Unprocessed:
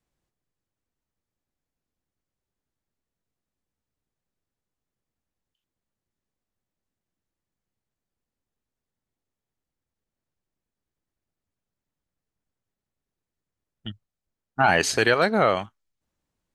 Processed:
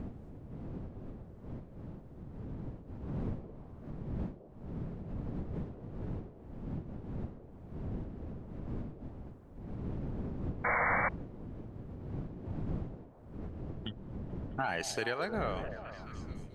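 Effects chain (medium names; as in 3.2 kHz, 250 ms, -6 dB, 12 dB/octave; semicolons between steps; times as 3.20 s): wind noise 200 Hz -34 dBFS; compression 2.5:1, threshold -47 dBFS, peak gain reduction 21 dB; on a send: repeats whose band climbs or falls 217 ms, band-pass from 500 Hz, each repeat 0.7 oct, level -7 dB; on the sum: painted sound noise, 10.64–11.09 s, 470–2300 Hz -35 dBFS; trim +5 dB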